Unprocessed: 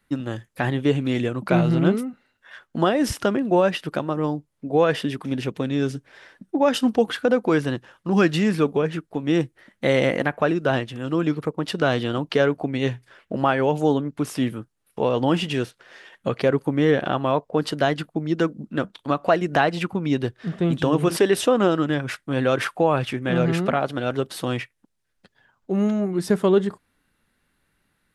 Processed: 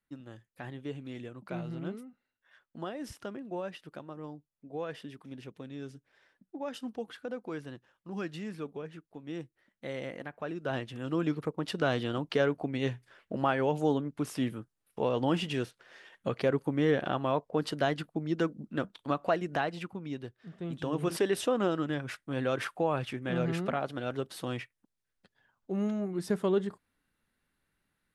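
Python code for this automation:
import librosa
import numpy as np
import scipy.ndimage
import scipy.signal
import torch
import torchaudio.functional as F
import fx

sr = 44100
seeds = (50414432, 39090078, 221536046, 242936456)

y = fx.gain(x, sr, db=fx.line((10.35, -19.0), (10.94, -8.0), (19.12, -8.0), (20.49, -19.0), (21.09, -10.0)))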